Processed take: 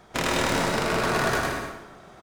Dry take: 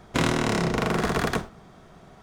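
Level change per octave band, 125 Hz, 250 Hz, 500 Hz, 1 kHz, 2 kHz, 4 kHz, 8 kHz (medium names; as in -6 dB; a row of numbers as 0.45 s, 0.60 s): -4.0 dB, -3.5 dB, +1.0 dB, +2.5 dB, +3.5 dB, +3.0 dB, +3.5 dB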